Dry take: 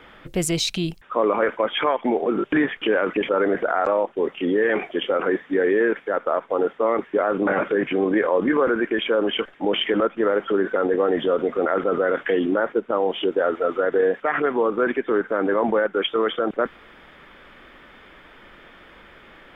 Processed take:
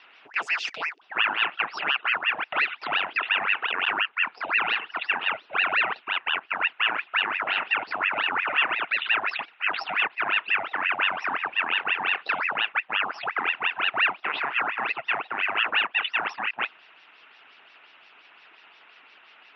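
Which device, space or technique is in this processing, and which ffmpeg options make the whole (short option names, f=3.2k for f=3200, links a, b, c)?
voice changer toy: -af "aeval=exprs='val(0)*sin(2*PI*1300*n/s+1300*0.8/5.7*sin(2*PI*5.7*n/s))':c=same,highpass=470,equalizer=f=540:t=q:w=4:g=-8,equalizer=f=1.4k:t=q:w=4:g=5,equalizer=f=2.7k:t=q:w=4:g=9,equalizer=f=4.1k:t=q:w=4:g=-7,lowpass=f=4.9k:w=0.5412,lowpass=f=4.9k:w=1.3066,volume=-4.5dB"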